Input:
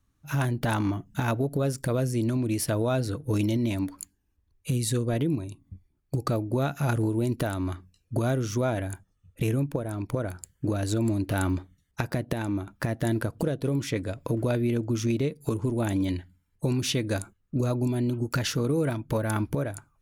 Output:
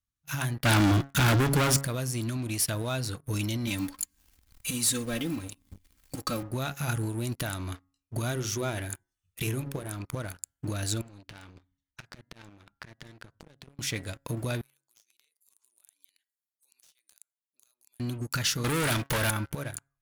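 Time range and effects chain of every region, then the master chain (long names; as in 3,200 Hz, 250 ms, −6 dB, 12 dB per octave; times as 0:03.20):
0:00.65–0:01.83: high-shelf EQ 8,300 Hz −4.5 dB + leveller curve on the samples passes 5 + hollow resonant body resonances 320/1,400/3,400 Hz, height 8 dB, ringing for 60 ms
0:03.67–0:06.43: mu-law and A-law mismatch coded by mu + upward compression, threshold −37 dBFS + comb filter 3.8 ms, depth 77%
0:08.31–0:09.97: parametric band 380 Hz +8.5 dB 0.28 octaves + mains-hum notches 60/120/180/240/300/360/420/480/540 Hz + one half of a high-frequency compander encoder only
0:11.01–0:13.79: downward compressor 16 to 1, threshold −35 dBFS + high-frequency loss of the air 98 metres
0:14.61–0:18.00: high-pass filter 450 Hz + first difference + downward compressor 5 to 1, threshold −55 dBFS
0:18.64–0:19.30: low-shelf EQ 310 Hz −9 dB + hum removal 49.24 Hz, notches 2 + leveller curve on the samples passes 5
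whole clip: guitar amp tone stack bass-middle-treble 5-5-5; hum removal 137.9 Hz, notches 15; leveller curve on the samples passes 3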